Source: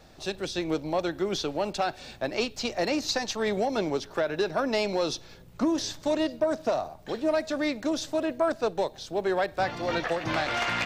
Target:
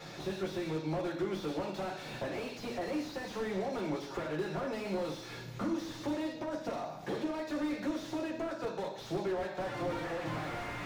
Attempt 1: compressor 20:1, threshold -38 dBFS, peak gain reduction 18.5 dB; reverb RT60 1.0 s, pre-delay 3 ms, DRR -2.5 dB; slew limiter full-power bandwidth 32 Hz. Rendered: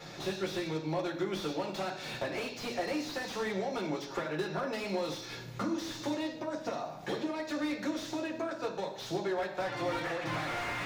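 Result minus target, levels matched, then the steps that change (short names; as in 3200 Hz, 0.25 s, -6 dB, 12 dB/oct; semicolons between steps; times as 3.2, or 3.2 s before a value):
slew limiter: distortion -5 dB
change: slew limiter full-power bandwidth 15 Hz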